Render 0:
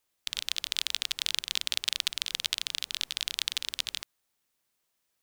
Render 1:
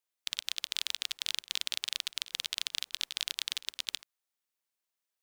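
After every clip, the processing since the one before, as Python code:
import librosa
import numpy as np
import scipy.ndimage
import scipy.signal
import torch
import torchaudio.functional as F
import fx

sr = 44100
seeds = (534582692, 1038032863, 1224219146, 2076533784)

y = fx.low_shelf(x, sr, hz=250.0, db=-12.0)
y = fx.level_steps(y, sr, step_db=18)
y = y * librosa.db_to_amplitude(1.5)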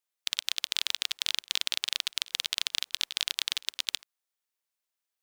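y = fx.low_shelf(x, sr, hz=270.0, db=-8.0)
y = fx.transient(y, sr, attack_db=5, sustain_db=0)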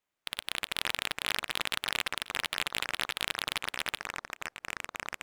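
y = scipy.ndimage.median_filter(x, 9, mode='constant')
y = fx.echo_pitch(y, sr, ms=165, semitones=-6, count=3, db_per_echo=-6.0)
y = fx.transient(y, sr, attack_db=-7, sustain_db=-1)
y = y * librosa.db_to_amplitude(7.5)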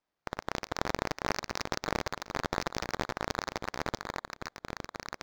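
y = fx.bit_reversed(x, sr, seeds[0], block=16)
y = np.interp(np.arange(len(y)), np.arange(len(y))[::4], y[::4])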